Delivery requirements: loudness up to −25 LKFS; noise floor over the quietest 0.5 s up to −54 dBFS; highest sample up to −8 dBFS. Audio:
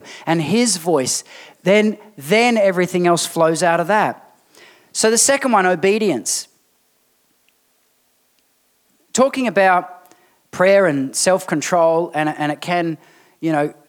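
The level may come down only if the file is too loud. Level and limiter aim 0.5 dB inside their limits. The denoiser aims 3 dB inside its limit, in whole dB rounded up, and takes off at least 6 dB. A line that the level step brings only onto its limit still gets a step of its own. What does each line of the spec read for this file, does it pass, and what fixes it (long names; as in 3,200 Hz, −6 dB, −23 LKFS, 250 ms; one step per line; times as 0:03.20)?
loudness −16.5 LKFS: out of spec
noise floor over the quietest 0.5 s −62 dBFS: in spec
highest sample −3.0 dBFS: out of spec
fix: level −9 dB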